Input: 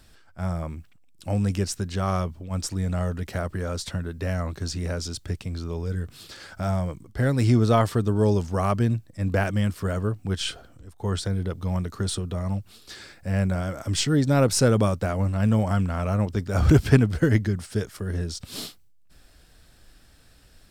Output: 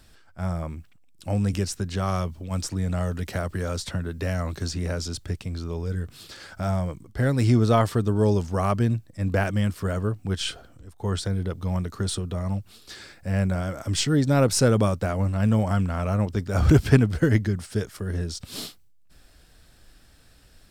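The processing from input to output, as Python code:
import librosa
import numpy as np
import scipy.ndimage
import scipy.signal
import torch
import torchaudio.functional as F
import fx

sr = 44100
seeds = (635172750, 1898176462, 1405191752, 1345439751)

y = fx.band_squash(x, sr, depth_pct=40, at=(1.53, 5.24))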